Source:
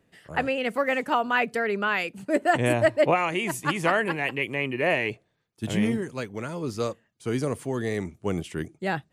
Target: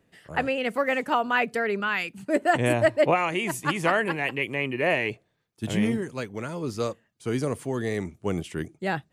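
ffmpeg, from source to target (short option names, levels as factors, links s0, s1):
-filter_complex "[0:a]asettb=1/sr,asplit=3[s0][s1][s2];[s0]atrim=end=1.804[s3];[s1]atrim=start=1.8:end=2.27,asetpts=PTS-STARTPTS,afade=t=in:d=0.004:c=qsin,afade=t=out:st=0.466:d=0.004:c=qsin,equalizer=f=530:t=o:w=1.1:g=-9[s4];[s2]atrim=start=2.266[s5];[s3][s4]acrossfade=d=0.004:c1=hsin:c2=qsin[s6];[s6][s5]acrossfade=d=0.004:c1=qsin:c2=hsin"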